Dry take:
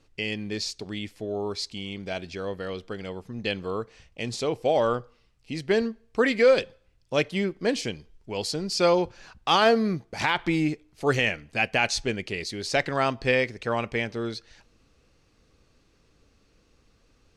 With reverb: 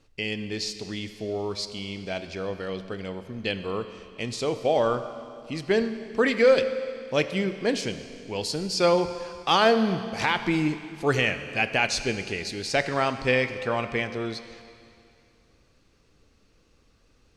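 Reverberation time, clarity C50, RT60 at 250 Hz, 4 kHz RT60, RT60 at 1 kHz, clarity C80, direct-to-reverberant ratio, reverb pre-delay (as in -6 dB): 2.5 s, 10.5 dB, 2.5 s, 2.4 s, 2.5 s, 11.5 dB, 10.0 dB, 21 ms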